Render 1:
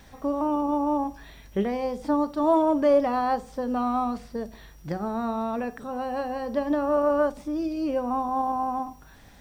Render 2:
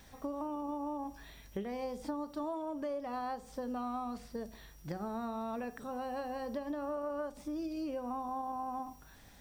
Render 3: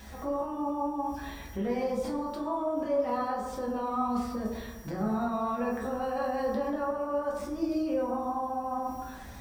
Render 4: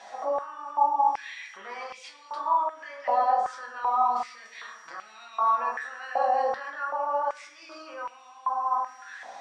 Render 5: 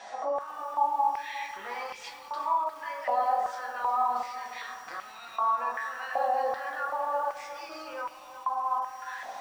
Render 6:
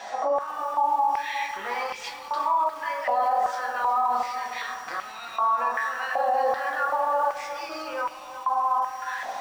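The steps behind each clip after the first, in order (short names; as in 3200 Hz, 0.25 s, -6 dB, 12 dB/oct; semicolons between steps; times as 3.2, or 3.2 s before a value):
high shelf 4400 Hz +6 dB; compressor 10:1, threshold -28 dBFS, peak gain reduction 13 dB; gain -7 dB
limiter -36 dBFS, peak gain reduction 9.5 dB; reverb RT60 1.2 s, pre-delay 7 ms, DRR -4.5 dB; gain +5.5 dB
LPF 7200 Hz 24 dB/oct; stepped high-pass 2.6 Hz 700–2600 Hz; gain +1 dB
in parallel at +1 dB: compressor 16:1, threshold -34 dBFS, peak gain reduction 18 dB; on the sum: lo-fi delay 0.358 s, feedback 55%, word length 7-bit, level -12 dB; gain -5 dB
median filter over 3 samples; limiter -22.5 dBFS, peak gain reduction 7 dB; gain +7 dB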